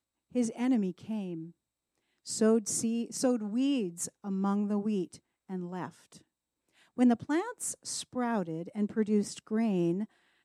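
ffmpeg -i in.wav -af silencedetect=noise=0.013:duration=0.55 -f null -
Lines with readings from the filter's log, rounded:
silence_start: 1.45
silence_end: 2.27 | silence_duration: 0.82
silence_start: 5.88
silence_end: 6.98 | silence_duration: 1.10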